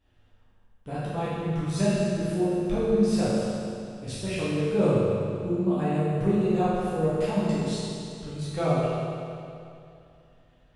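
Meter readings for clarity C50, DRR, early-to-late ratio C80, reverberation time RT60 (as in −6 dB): −4.0 dB, −11.5 dB, −2.0 dB, 2.6 s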